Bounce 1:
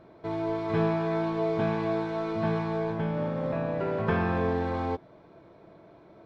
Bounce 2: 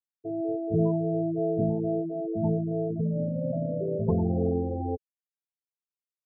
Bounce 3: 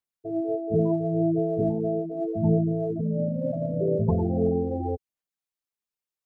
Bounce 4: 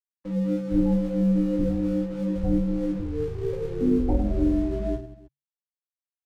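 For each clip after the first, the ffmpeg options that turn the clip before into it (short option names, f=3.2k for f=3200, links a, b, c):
-af "lowpass=1.1k,afftfilt=real='re*gte(hypot(re,im),0.112)':imag='im*gte(hypot(re,im),0.112)':win_size=1024:overlap=0.75,tiltshelf=f=640:g=4"
-af "aphaser=in_gain=1:out_gain=1:delay=4.9:decay=0.39:speed=0.77:type=sinusoidal,volume=1.5dB"
-af "aeval=exprs='sgn(val(0))*max(abs(val(0))-0.00447,0)':c=same,afreqshift=-140,aecho=1:1:20|52|103.2|185.1|316.2:0.631|0.398|0.251|0.158|0.1"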